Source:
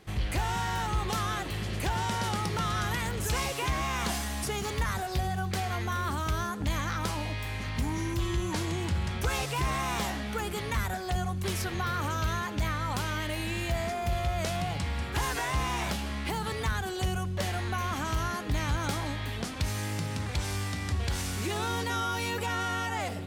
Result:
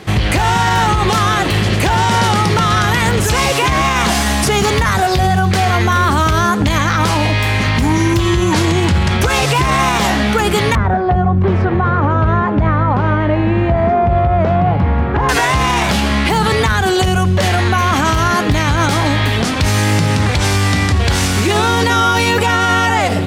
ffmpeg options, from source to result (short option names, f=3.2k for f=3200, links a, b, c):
-filter_complex "[0:a]asettb=1/sr,asplit=3[a][b][c];[a]atrim=end=10.754[d];[b]atrim=start=10.75:end=15.29,asetpts=PTS-STARTPTS,afade=t=in:d=0.004:c=qsin,afade=t=out:st=4.536:d=0.004:c=qsin,lowpass=1.1k[e];[c]atrim=start=15.286[f];[d][e]acrossfade=d=0.004:c1=hsin:c2=qsin[g];[g][f]acrossfade=d=0.004:c1=qsin:c2=hsin,highpass=75,highshelf=f=10k:g=-10,alimiter=level_in=25.5dB:limit=-1dB:release=50:level=0:latency=1,volume=-4dB"